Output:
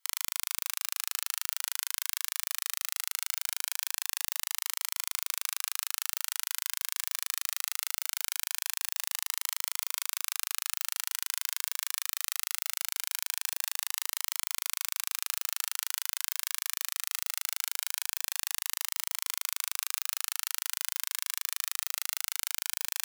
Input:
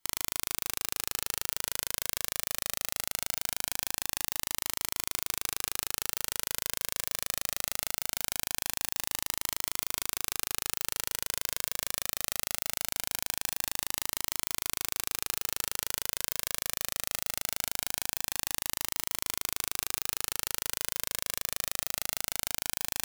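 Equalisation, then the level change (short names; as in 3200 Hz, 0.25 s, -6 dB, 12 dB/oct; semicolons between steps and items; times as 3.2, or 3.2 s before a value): HPF 1000 Hz 24 dB/oct; 0.0 dB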